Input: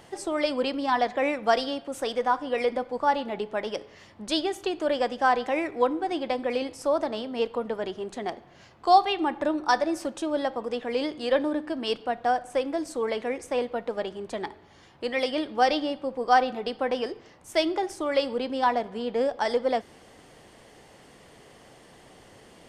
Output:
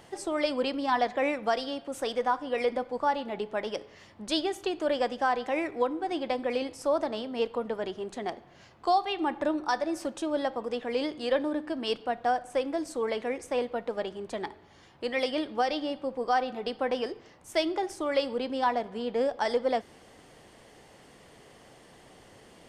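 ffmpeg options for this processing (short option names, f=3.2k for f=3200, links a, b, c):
-af "alimiter=limit=-13.5dB:level=0:latency=1:release=346,volume=-2dB"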